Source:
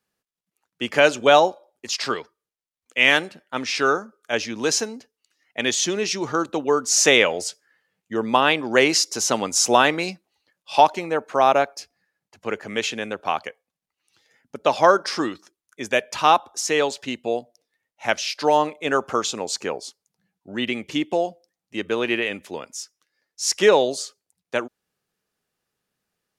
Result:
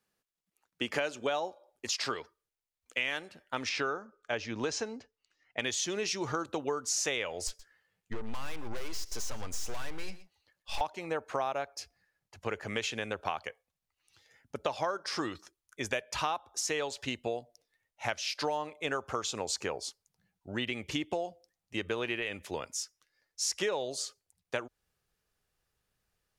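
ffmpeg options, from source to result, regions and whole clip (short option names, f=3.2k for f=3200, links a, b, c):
-filter_complex "[0:a]asettb=1/sr,asplit=3[a][b][c];[a]atrim=end=3.694[d];[b]atrim=start=3.69:end=5.59,asetpts=PTS-STARTPTS,afade=t=in:d=0.004:c=qsin,afade=t=out:st=1.896:d=0.004:c=qsin,lowpass=f=8.2k:w=0.5412,lowpass=f=8.2k:w=1.3066,highshelf=f=4.2k:g=-10[e];[c]atrim=start=5.586[f];[d][e]acrossfade=d=0.004:c1=hsin:c2=qsin[g];[g][f]acrossfade=d=0.004:c1=qsin:c2=hsin,asettb=1/sr,asplit=3[h][i][j];[h]atrim=end=7.474[k];[i]atrim=start=7.47:end=10.81,asetpts=PTS-STARTPTS,afade=t=in:d=0.004:c=qsin,afade=t=out:st=3.336:d=0.004:c=qsin,aeval=exprs='(tanh(28.2*val(0)+0.45)-tanh(0.45))/28.2':c=same,aecho=1:1:121:0.1,atrim=end_sample=147294[l];[j]atrim=start=10.806[m];[k][l]acrossfade=d=0.004:c1=hsin:c2=qsin[n];[n][m]acrossfade=d=0.004:c1=qsin:c2=hsin,asubboost=boost=7.5:cutoff=75,acompressor=threshold=-28dB:ratio=6,volume=-2dB"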